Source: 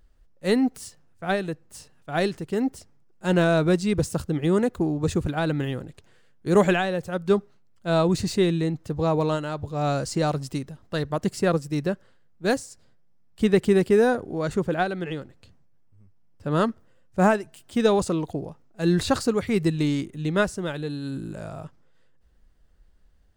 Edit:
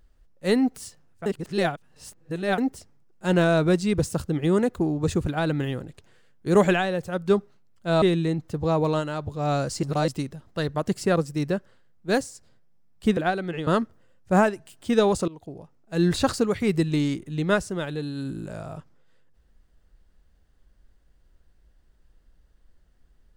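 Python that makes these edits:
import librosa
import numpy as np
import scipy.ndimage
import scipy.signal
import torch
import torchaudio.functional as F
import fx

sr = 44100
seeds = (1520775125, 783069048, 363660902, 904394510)

y = fx.edit(x, sr, fx.reverse_span(start_s=1.26, length_s=1.32),
    fx.cut(start_s=8.02, length_s=0.36),
    fx.reverse_span(start_s=10.19, length_s=0.25),
    fx.cut(start_s=13.53, length_s=1.17),
    fx.cut(start_s=15.2, length_s=1.34),
    fx.fade_in_from(start_s=18.15, length_s=0.77, floor_db=-19.5), tone=tone)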